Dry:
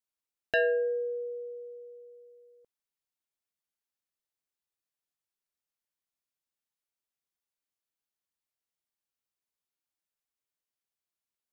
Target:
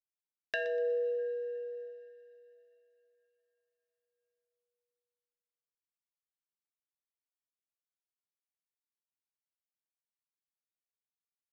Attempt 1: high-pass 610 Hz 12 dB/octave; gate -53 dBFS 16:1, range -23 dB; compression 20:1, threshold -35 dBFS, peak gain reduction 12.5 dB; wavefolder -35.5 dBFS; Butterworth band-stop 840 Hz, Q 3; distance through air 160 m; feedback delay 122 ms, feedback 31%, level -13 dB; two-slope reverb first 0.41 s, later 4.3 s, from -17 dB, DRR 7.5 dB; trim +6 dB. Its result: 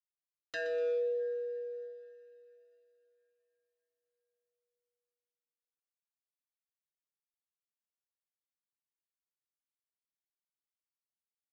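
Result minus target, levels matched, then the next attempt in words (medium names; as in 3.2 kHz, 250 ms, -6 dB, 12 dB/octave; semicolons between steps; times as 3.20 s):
wavefolder: distortion +8 dB
high-pass 610 Hz 12 dB/octave; gate -53 dBFS 16:1, range -23 dB; compression 20:1, threshold -35 dBFS, peak gain reduction 12.5 dB; wavefolder -27 dBFS; Butterworth band-stop 840 Hz, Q 3; distance through air 160 m; feedback delay 122 ms, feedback 31%, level -13 dB; two-slope reverb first 0.41 s, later 4.3 s, from -17 dB, DRR 7.5 dB; trim +6 dB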